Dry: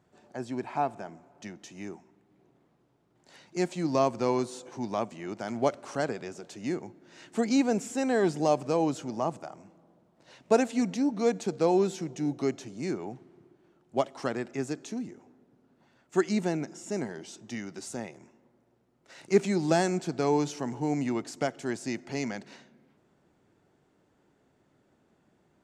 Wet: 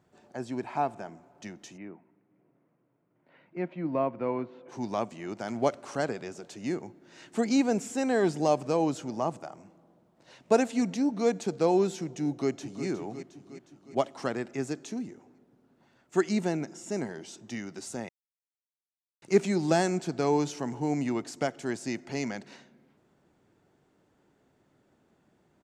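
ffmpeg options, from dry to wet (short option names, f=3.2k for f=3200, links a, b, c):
-filter_complex "[0:a]asplit=3[a][b][c];[a]afade=t=out:st=1.76:d=0.02[d];[b]highpass=150,equalizer=f=220:t=q:w=4:g=-4,equalizer=f=390:t=q:w=4:g=-6,equalizer=f=800:t=q:w=4:g=-8,equalizer=f=1.2k:t=q:w=4:g=-4,equalizer=f=1.7k:t=q:w=4:g=-5,lowpass=f=2.2k:w=0.5412,lowpass=f=2.2k:w=1.3066,afade=t=in:st=1.76:d=0.02,afade=t=out:st=4.68:d=0.02[e];[c]afade=t=in:st=4.68:d=0.02[f];[d][e][f]amix=inputs=3:normalize=0,asplit=2[g][h];[h]afade=t=in:st=12.27:d=0.01,afade=t=out:st=12.86:d=0.01,aecho=0:1:360|720|1080|1440|1800|2160|2520:0.316228|0.189737|0.113842|0.0683052|0.0409831|0.0245899|0.0147539[i];[g][i]amix=inputs=2:normalize=0,asplit=3[j][k][l];[j]atrim=end=18.09,asetpts=PTS-STARTPTS,afade=t=out:st=18.086:d=0.004:c=hsin[m];[k]atrim=start=18.09:end=19.22,asetpts=PTS-STARTPTS,volume=0[n];[l]atrim=start=19.22,asetpts=PTS-STARTPTS,afade=t=in:d=0.004:c=hsin[o];[m][n][o]concat=n=3:v=0:a=1"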